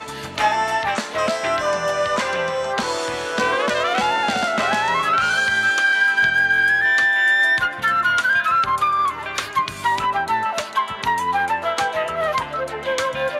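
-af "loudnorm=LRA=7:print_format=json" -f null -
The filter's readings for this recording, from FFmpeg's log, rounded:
"input_i" : "-19.4",
"input_tp" : "-6.9",
"input_lra" : "6.0",
"input_thresh" : "-29.4",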